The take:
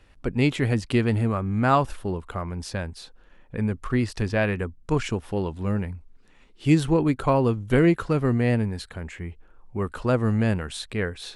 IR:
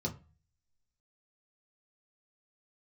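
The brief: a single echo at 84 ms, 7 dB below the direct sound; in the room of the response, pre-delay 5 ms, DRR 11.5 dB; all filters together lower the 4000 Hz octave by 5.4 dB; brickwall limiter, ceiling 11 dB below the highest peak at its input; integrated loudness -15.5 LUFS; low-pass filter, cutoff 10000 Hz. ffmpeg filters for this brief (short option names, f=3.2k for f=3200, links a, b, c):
-filter_complex "[0:a]lowpass=10k,equalizer=f=4k:t=o:g=-7,alimiter=limit=-18dB:level=0:latency=1,aecho=1:1:84:0.447,asplit=2[a][b];[1:a]atrim=start_sample=2205,adelay=5[c];[b][c]afir=irnorm=-1:irlink=0,volume=-14dB[d];[a][d]amix=inputs=2:normalize=0,volume=10.5dB"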